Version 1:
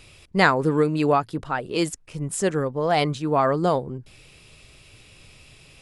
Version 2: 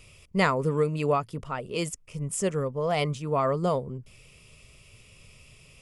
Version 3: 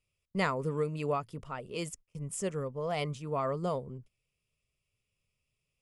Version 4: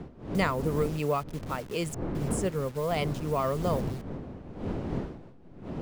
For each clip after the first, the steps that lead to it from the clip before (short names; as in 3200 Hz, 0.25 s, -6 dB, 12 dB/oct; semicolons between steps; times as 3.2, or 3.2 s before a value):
thirty-one-band EQ 315 Hz -11 dB, 800 Hz -9 dB, 1600 Hz -11 dB, 4000 Hz -10 dB; gain -2 dB
gate -42 dBFS, range -23 dB; gain -7 dB
level-crossing sampler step -46 dBFS; wind noise 290 Hz -41 dBFS; three-band squash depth 40%; gain +4 dB